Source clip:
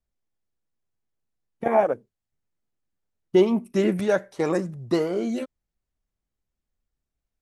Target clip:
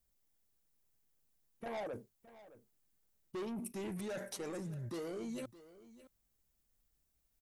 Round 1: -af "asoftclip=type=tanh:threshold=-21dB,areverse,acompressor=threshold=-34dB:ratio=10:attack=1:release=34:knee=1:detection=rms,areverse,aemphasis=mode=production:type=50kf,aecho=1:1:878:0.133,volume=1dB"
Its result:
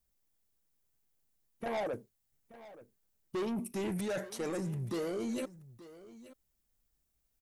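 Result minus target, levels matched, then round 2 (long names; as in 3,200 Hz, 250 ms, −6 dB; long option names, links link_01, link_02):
echo 263 ms late; downward compressor: peak gain reduction −6.5 dB
-af "asoftclip=type=tanh:threshold=-21dB,areverse,acompressor=threshold=-41dB:ratio=10:attack=1:release=34:knee=1:detection=rms,areverse,aemphasis=mode=production:type=50kf,aecho=1:1:615:0.133,volume=1dB"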